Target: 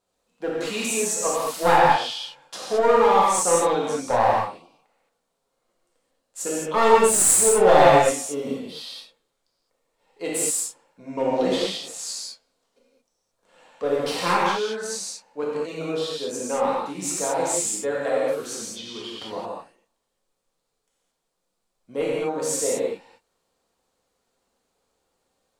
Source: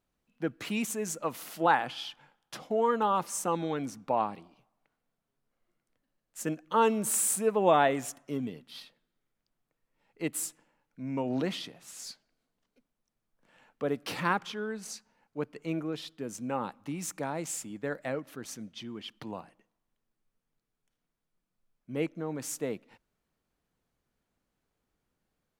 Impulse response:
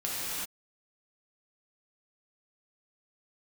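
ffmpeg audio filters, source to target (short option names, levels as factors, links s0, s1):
-filter_complex "[0:a]equalizer=f=125:t=o:w=1:g=-5,equalizer=f=500:t=o:w=1:g=10,equalizer=f=1000:t=o:w=1:g=8,equalizer=f=4000:t=o:w=1:g=8,equalizer=f=8000:t=o:w=1:g=11,aeval=exprs='clip(val(0),-1,0.158)':c=same[s0];[1:a]atrim=start_sample=2205,afade=t=out:st=0.28:d=0.01,atrim=end_sample=12789[s1];[s0][s1]afir=irnorm=-1:irlink=0,volume=0.668"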